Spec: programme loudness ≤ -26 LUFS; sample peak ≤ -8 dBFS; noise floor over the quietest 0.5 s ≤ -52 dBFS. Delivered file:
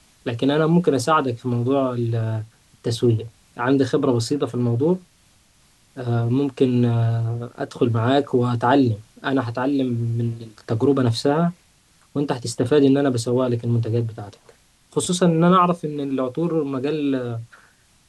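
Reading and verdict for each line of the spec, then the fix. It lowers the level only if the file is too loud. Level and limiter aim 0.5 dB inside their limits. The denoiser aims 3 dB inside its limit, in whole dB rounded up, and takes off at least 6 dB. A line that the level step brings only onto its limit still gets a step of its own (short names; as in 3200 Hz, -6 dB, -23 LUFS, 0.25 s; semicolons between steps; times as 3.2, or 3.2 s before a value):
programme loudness -21.0 LUFS: fail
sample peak -3.5 dBFS: fail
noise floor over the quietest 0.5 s -57 dBFS: OK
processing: gain -5.5 dB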